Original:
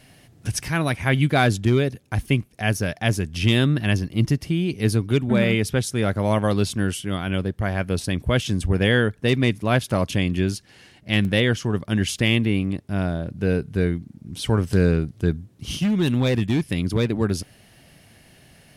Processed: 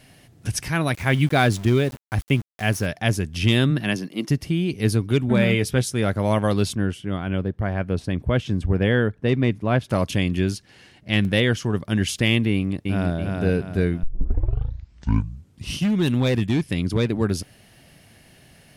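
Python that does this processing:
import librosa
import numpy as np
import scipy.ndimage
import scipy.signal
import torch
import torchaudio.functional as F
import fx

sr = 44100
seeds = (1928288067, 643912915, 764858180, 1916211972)

y = fx.sample_gate(x, sr, floor_db=-35.0, at=(0.94, 2.86))
y = fx.highpass(y, sr, hz=fx.line((3.7, 96.0), (4.29, 280.0)), slope=24, at=(3.7, 4.29), fade=0.02)
y = fx.doubler(y, sr, ms=16.0, db=-10.5, at=(5.18, 5.93))
y = fx.lowpass(y, sr, hz=1500.0, slope=6, at=(6.74, 9.89), fade=0.02)
y = fx.high_shelf(y, sr, hz=8700.0, db=-5.5, at=(10.53, 11.26))
y = fx.echo_throw(y, sr, start_s=12.52, length_s=0.65, ms=330, feedback_pct=40, wet_db=-3.5)
y = fx.lowpass(y, sr, hz=11000.0, slope=12, at=(16.49, 17.06))
y = fx.edit(y, sr, fx.tape_start(start_s=14.03, length_s=1.79), tone=tone)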